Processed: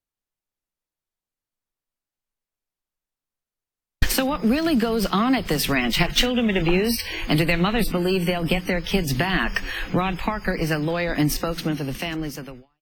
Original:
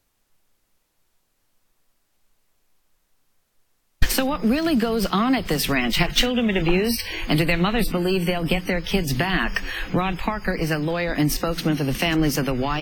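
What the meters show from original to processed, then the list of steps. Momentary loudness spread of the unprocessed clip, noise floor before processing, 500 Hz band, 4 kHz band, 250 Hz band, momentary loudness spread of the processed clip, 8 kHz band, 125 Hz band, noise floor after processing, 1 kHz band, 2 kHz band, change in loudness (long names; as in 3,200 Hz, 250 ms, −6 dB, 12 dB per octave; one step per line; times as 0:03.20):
5 LU, −70 dBFS, −0.5 dB, −0.5 dB, −0.5 dB, 7 LU, −0.5 dB, −1.0 dB, below −85 dBFS, −0.5 dB, −0.5 dB, −0.5 dB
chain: fade-out on the ending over 1.60 s
noise gate with hold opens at −27 dBFS
harmonic generator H 6 −39 dB, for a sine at −2.5 dBFS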